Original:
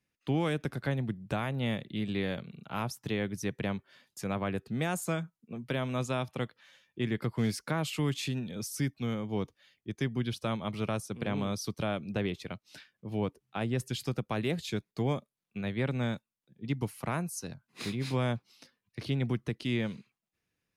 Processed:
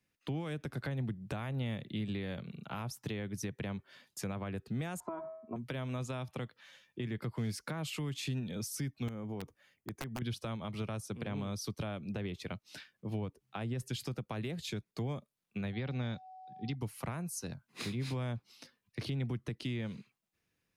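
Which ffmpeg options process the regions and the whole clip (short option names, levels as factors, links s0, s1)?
-filter_complex "[0:a]asettb=1/sr,asplit=3[s0][s1][s2];[s0]atrim=end=5.004[s3];[s1]atrim=start=5:end=5.56,asetpts=PTS-STARTPTS,afade=t=in:d=0.004:c=qsin,afade=t=out:st=0.556:d=0.004:c=qsin,lowpass=f=930:t=q:w=7.1,aecho=1:1:3:0.95,atrim=end_sample=24696,bandreject=f=91.9:t=h:w=4,bandreject=f=183.8:t=h:w=4,bandreject=f=275.7:t=h:w=4,bandreject=f=367.6:t=h:w=4,bandreject=f=459.5:t=h:w=4,bandreject=f=551.4:t=h:w=4,bandreject=f=643.3:t=h:w=4,bandreject=f=735.2:t=h:w=4,bandreject=f=827.1:t=h:w=4,bandreject=f=919:t=h:w=4,bandreject=f=1010.9:t=h:w=4,bandreject=f=1102.8:t=h:w=4,bandreject=f=1194.7:t=h:w=4,bandreject=f=1286.6:t=h:w=4,bandreject=f=1378.5:t=h:w=4,bandreject=f=1470.4:t=h:w=4,bandreject=f=1562.3:t=h:w=4,bandreject=f=1654.2:t=h:w=4,bandreject=f=1746.1:t=h:w=4,bandreject=f=1838:t=h:w=4,bandreject=f=1929.9:t=h:w=4,bandreject=f=2021.8:t=h:w=4,bandreject=f=2113.7:t=h:w=4,bandreject=f=2205.6:t=h:w=4,bandreject=f=2297.5:t=h:w=4[s4];[s2]atrim=start=5.556[s5];[s3][s4]acrossfade=d=0.004:c1=hsin:c2=qsin[s6];[s6][s5]acrossfade=d=0.004:c1=qsin:c2=hsin,asettb=1/sr,asplit=3[s7][s8][s9];[s7]atrim=end=9.084[s10];[s8]atrim=start=9.08:end=10.22,asetpts=PTS-STARTPTS,afade=t=in:d=0.004:c=qsin,afade=t=out:st=1.136:d=0.004:c=qsin,equalizer=f=3900:w=1.1:g=-11.5,acompressor=threshold=0.0141:ratio=6:attack=3.2:release=140:knee=1:detection=peak,aeval=exprs='(mod(42.2*val(0)+1,2)-1)/42.2':c=same[s11];[s9]atrim=start=10.216[s12];[s10][s11]acrossfade=d=0.004:c1=hsin:c2=qsin[s13];[s13][s12]acrossfade=d=0.004:c1=qsin:c2=hsin,asettb=1/sr,asplit=3[s14][s15][s16];[s14]atrim=end=15.734[s17];[s15]atrim=start=15.73:end=16.75,asetpts=PTS-STARTPTS,afade=t=in:d=0.004:c=qsin,afade=t=out:st=1.016:d=0.004:c=qsin,highshelf=f=6900:t=q:w=3:g=-13,aeval=exprs='val(0)+0.00316*sin(2*PI*750*n/s)':c=same[s18];[s16]atrim=start=16.746[s19];[s17][s18]acrossfade=d=0.004:c1=hsin:c2=qsin[s20];[s20][s19]acrossfade=d=0.004:c1=qsin:c2=hsin,alimiter=level_in=1.19:limit=0.0631:level=0:latency=1:release=217,volume=0.841,acrossover=split=140[s21][s22];[s22]acompressor=threshold=0.0112:ratio=6[s23];[s21][s23]amix=inputs=2:normalize=0,volume=1.19"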